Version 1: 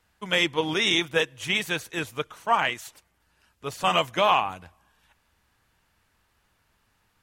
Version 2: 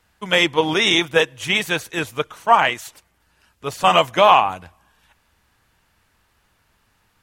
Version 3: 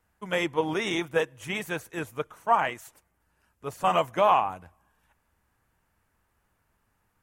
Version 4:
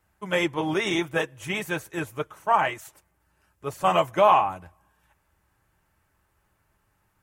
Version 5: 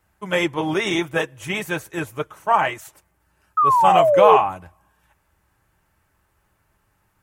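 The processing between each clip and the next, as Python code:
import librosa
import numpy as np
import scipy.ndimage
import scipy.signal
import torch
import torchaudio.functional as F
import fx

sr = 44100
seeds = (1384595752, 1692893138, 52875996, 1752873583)

y1 = fx.dynamic_eq(x, sr, hz=750.0, q=0.91, threshold_db=-34.0, ratio=4.0, max_db=4)
y1 = y1 * 10.0 ** (5.5 / 20.0)
y2 = fx.peak_eq(y1, sr, hz=3900.0, db=-11.0, octaves=1.5)
y2 = y2 * 10.0 ** (-7.5 / 20.0)
y3 = fx.notch_comb(y2, sr, f0_hz=240.0)
y3 = y3 * 10.0 ** (4.0 / 20.0)
y4 = fx.spec_paint(y3, sr, seeds[0], shape='fall', start_s=3.57, length_s=0.8, low_hz=410.0, high_hz=1300.0, level_db=-19.0)
y4 = y4 * 10.0 ** (3.5 / 20.0)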